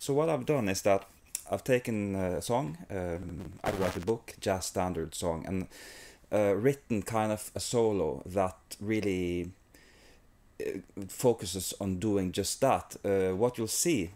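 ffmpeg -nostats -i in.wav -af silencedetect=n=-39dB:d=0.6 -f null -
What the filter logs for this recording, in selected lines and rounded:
silence_start: 9.75
silence_end: 10.60 | silence_duration: 0.85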